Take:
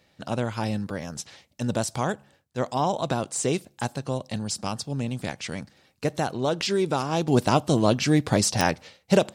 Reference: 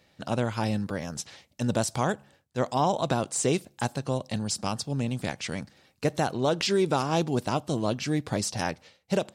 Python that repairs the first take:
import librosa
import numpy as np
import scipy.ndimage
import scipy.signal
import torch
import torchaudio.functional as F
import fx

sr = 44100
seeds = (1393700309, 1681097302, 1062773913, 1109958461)

y = fx.fix_declick_ar(x, sr, threshold=10.0)
y = fx.gain(y, sr, db=fx.steps((0.0, 0.0), (7.28, -7.0)))